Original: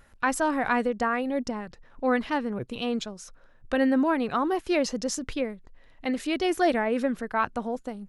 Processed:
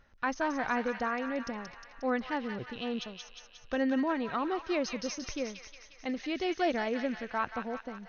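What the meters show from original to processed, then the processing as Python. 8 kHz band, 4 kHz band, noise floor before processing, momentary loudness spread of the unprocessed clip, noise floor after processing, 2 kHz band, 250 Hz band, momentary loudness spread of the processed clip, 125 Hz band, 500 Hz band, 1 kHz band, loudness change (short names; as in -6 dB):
-8.5 dB, -4.5 dB, -55 dBFS, 10 LU, -56 dBFS, -5.0 dB, -6.5 dB, 12 LU, -6.5 dB, -6.5 dB, -6.0 dB, -6.0 dB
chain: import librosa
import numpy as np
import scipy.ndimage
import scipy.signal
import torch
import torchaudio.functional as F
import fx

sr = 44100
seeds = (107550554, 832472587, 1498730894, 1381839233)

y = fx.brickwall_lowpass(x, sr, high_hz=6600.0)
y = fx.echo_wet_highpass(y, sr, ms=179, feedback_pct=62, hz=1500.0, wet_db=-4.0)
y = y * 10.0 ** (-6.5 / 20.0)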